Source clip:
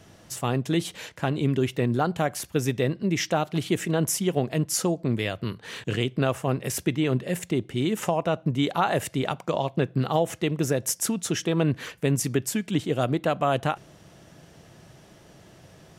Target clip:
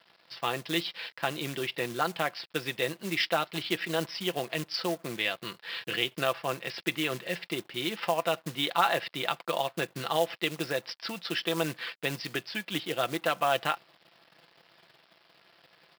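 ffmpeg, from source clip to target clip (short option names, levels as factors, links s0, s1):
-af "aecho=1:1:5.9:0.45,aresample=11025,aeval=exprs='sgn(val(0))*max(abs(val(0))-0.00282,0)':c=same,aresample=44100,acrusher=bits=6:mode=log:mix=0:aa=0.000001,highpass=f=1500:p=1,volume=1.5"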